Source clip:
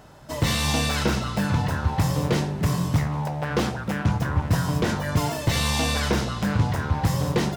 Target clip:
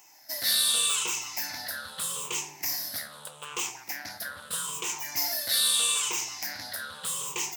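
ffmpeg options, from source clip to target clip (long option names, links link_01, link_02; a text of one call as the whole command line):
ffmpeg -i in.wav -af "afftfilt=real='re*pow(10,16/40*sin(2*PI*(0.71*log(max(b,1)*sr/1024/100)/log(2)-(-0.8)*(pts-256)/sr)))':imag='im*pow(10,16/40*sin(2*PI*(0.71*log(max(b,1)*sr/1024/100)/log(2)-(-0.8)*(pts-256)/sr)))':win_size=1024:overlap=0.75,equalizer=frequency=67:width_type=o:width=2.6:gain=-6.5,aeval=exprs='0.376*(cos(1*acos(clip(val(0)/0.376,-1,1)))-cos(1*PI/2))+0.00473*(cos(8*acos(clip(val(0)/0.376,-1,1)))-cos(8*PI/2))':channel_layout=same,aderivative,volume=3.5dB" out.wav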